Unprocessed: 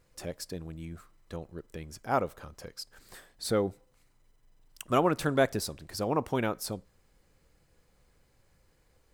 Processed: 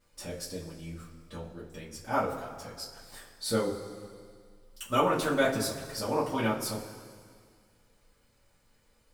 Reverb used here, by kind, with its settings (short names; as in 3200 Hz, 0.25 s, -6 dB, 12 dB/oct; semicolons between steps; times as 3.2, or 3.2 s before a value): two-slope reverb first 0.23 s, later 2 s, from -18 dB, DRR -9 dB; gain -8 dB